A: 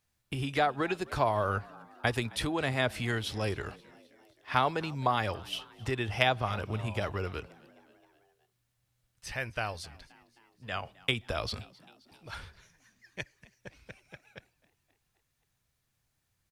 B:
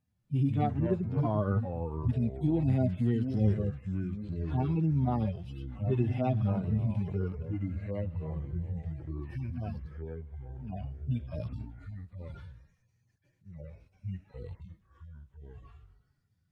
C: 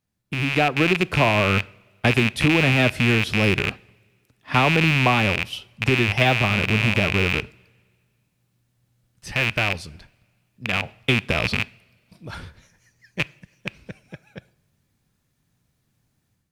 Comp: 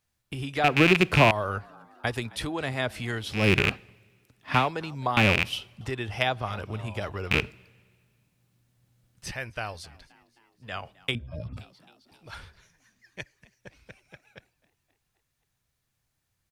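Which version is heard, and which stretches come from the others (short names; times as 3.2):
A
0.64–1.31 from C
3.42–4.57 from C, crossfade 0.24 s
5.17–5.81 from C
7.31–9.31 from C
11.15–11.57 from B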